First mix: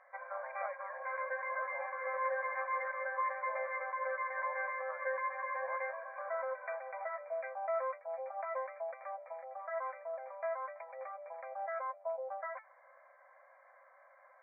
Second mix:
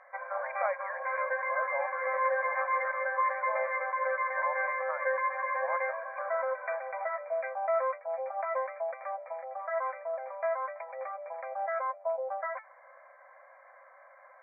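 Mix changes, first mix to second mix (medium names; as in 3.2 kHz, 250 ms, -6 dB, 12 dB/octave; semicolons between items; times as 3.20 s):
speech +11.5 dB; background +6.5 dB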